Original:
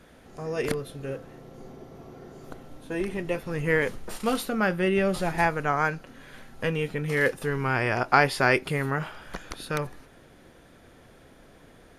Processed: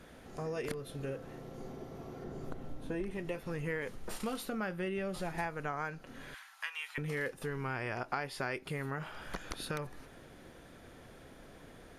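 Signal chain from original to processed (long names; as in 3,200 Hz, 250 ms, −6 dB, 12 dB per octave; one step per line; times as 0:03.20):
0:02.24–0:03.11: spectral tilt −1.5 dB per octave
0:06.34–0:06.98: Butterworth high-pass 940 Hz 36 dB per octave
downward compressor 4 to 1, threshold −35 dBFS, peak gain reduction 17.5 dB
level −1 dB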